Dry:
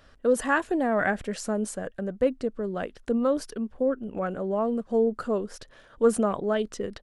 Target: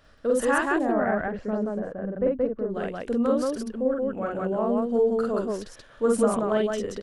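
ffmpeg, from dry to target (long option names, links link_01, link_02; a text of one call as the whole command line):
ffmpeg -i in.wav -filter_complex "[0:a]asettb=1/sr,asplit=3[link_01][link_02][link_03];[link_01]atrim=end=0.774[link_04];[link_02]atrim=start=0.77:end=2.7,asetpts=PTS-STARTPTS,afade=type=in:duration=0.004:curve=qsin,afade=type=out:start_time=1.926:duration=0.004:curve=qsin,lowpass=1400[link_05];[link_03]atrim=start=2.696[link_06];[link_04][link_05]acrossfade=duration=0.004:curve1=hsin:curve2=qsin[link_07];[link_07][link_06]acrossfade=duration=0.004:curve1=qsin:curve2=hsin,aecho=1:1:46.65|177.8:0.891|0.891,volume=-2.5dB" out.wav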